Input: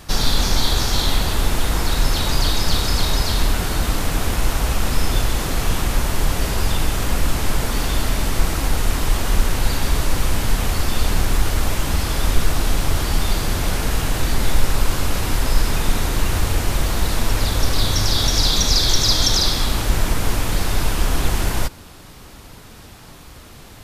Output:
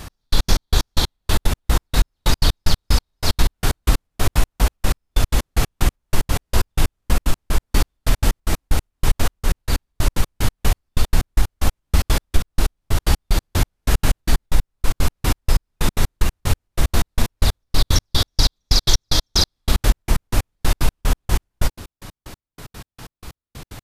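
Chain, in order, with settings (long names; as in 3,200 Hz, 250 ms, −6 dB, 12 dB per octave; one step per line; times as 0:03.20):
low-shelf EQ 150 Hz +3.5 dB
downward compressor, threshold −13 dBFS, peak gain reduction 10 dB
gate pattern "x...x.x..x.." 186 BPM −60 dB
level +4.5 dB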